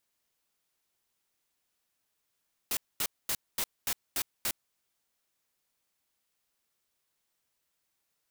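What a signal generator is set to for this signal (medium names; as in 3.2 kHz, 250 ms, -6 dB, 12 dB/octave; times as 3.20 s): noise bursts white, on 0.06 s, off 0.23 s, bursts 7, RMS -30.5 dBFS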